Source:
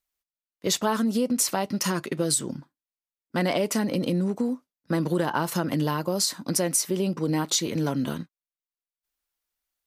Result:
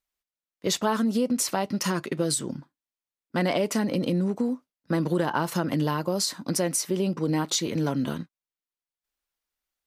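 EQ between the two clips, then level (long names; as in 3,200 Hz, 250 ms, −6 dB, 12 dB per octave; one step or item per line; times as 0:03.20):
high-shelf EQ 6,900 Hz −5.5 dB
0.0 dB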